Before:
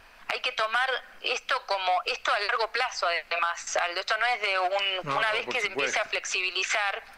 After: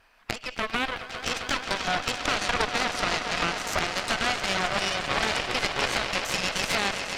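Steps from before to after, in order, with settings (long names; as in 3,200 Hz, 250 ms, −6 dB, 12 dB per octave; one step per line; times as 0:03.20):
echo that builds up and dies away 133 ms, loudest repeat 5, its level −10 dB
healed spectral selection 0:00.44–0:01.03, 2,700–5,400 Hz
harmonic generator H 3 −14 dB, 4 −10 dB, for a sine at −11 dBFS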